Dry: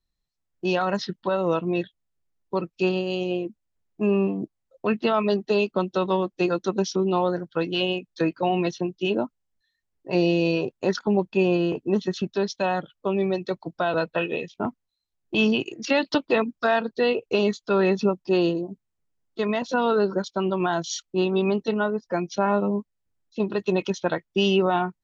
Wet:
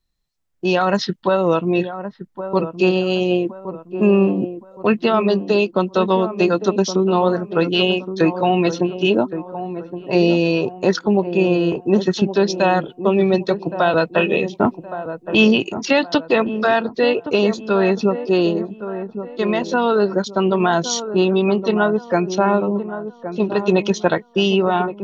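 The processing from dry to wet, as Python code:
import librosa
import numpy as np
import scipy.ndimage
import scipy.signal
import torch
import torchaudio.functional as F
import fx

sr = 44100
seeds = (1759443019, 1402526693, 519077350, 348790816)

p1 = fx.rider(x, sr, range_db=4, speed_s=0.5)
p2 = p1 + fx.echo_wet_lowpass(p1, sr, ms=1118, feedback_pct=36, hz=1300.0, wet_db=-10.5, dry=0)
y = p2 * librosa.db_to_amplitude(6.5)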